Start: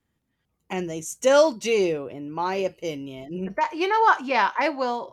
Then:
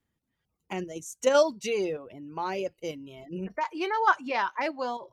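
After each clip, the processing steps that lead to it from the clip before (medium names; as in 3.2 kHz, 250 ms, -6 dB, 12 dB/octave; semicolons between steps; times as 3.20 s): reverb removal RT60 0.55 s; in parallel at 0 dB: level held to a coarse grid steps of 16 dB; on the sum: trim -8.5 dB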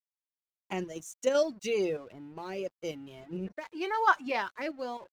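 rotary cabinet horn 0.9 Hz; crossover distortion -56.5 dBFS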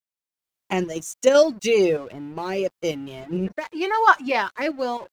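level rider gain up to 11.5 dB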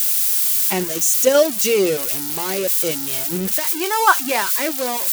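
zero-crossing glitches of -12 dBFS; trim +1 dB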